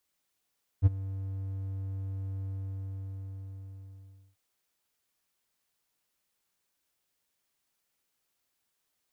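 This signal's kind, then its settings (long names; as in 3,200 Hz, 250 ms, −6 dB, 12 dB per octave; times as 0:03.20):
note with an ADSR envelope triangle 96.5 Hz, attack 41 ms, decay 23 ms, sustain −18.5 dB, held 1.63 s, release 1,910 ms −12.5 dBFS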